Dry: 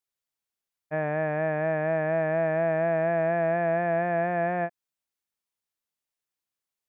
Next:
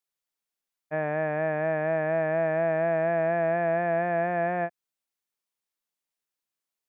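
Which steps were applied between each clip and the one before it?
bell 82 Hz -13.5 dB 0.81 oct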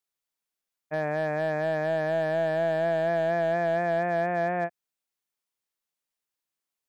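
hard clip -19 dBFS, distortion -21 dB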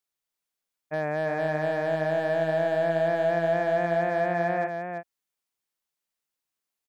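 echo 0.336 s -6 dB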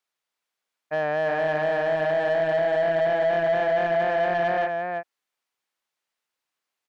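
overdrive pedal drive 14 dB, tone 2500 Hz, clips at -15 dBFS

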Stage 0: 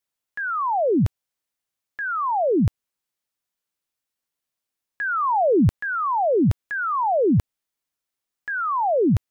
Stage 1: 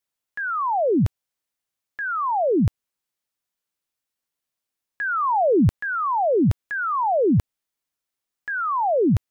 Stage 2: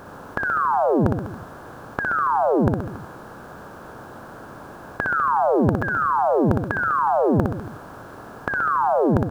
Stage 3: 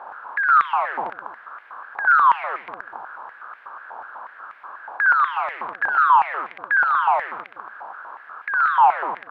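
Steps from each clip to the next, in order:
nothing audible
per-bin compression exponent 0.4; compressor 2:1, threshold -22 dBFS, peak gain reduction 7.5 dB; reverse bouncing-ball echo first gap 60 ms, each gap 1.1×, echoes 5
hard clip -19 dBFS, distortion -10 dB; air absorption 500 m; stepped high-pass 8.2 Hz 850–2100 Hz; gain +1.5 dB

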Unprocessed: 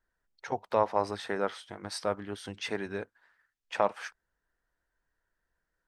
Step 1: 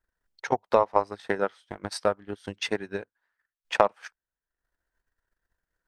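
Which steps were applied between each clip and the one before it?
transient shaper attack +10 dB, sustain -11 dB; gain -1 dB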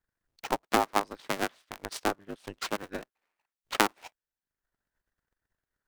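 cycle switcher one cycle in 2, inverted; bell 74 Hz -4 dB 2.6 oct; gain -4 dB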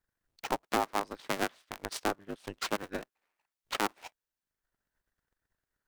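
limiter -16.5 dBFS, peak gain reduction 11 dB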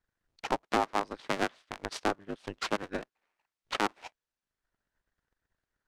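air absorption 61 m; gain +2 dB

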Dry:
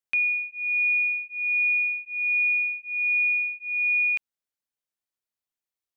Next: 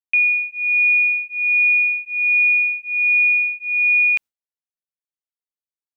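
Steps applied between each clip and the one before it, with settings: gate with hold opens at -34 dBFS; gain +7.5 dB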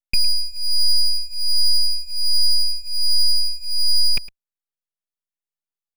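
minimum comb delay 4.9 ms; full-wave rectifier; echo 0.109 s -18 dB; gain +2 dB

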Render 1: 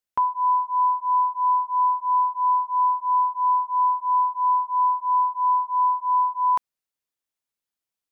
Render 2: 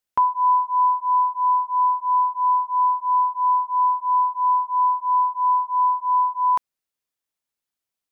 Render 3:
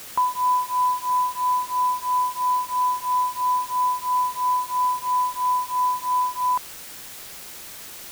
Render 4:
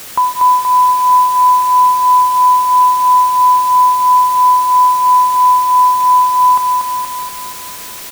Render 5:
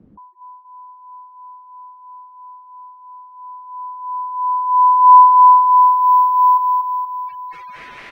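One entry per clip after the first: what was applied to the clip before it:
vocal rider 2 s; gain +1.5 dB
requantised 6-bit, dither triangular; gain -3 dB
feedback echo 0.237 s, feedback 58%, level -4.5 dB; gain +8.5 dB
careless resampling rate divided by 3×, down filtered, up zero stuff; spectral gate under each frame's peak -20 dB strong; low-pass sweep 230 Hz -> 2100 Hz, 3.23–6.11; gain -4.5 dB

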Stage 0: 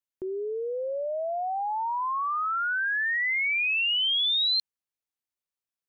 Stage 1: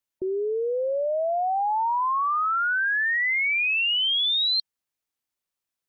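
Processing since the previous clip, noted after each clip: spectral gate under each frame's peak -30 dB strong; in parallel at -0.5 dB: negative-ratio compressor -29 dBFS; on the sum: gain -1.5 dB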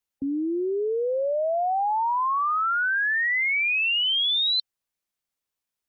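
frequency shift -99 Hz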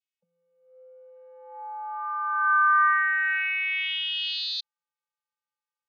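vocoder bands 16, square 171 Hz; high-pass sweep 2500 Hz -> 1000 Hz, 1.11–3.19; gain -1.5 dB

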